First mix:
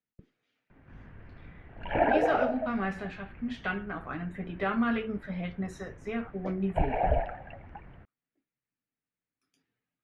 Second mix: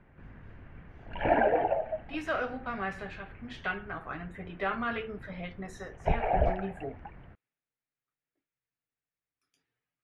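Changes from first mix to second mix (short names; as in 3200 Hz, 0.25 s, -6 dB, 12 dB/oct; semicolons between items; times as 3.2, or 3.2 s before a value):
speech: add bell 230 Hz -10.5 dB 0.92 oct; background: entry -0.70 s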